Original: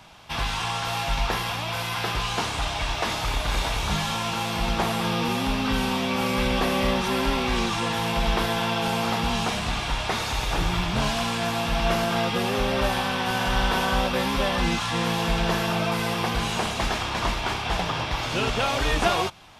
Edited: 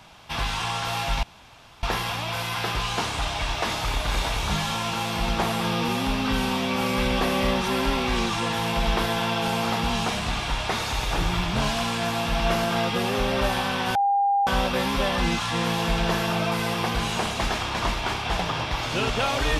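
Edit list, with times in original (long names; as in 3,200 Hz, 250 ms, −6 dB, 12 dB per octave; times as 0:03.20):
0:01.23: splice in room tone 0.60 s
0:13.35–0:13.87: beep over 802 Hz −18 dBFS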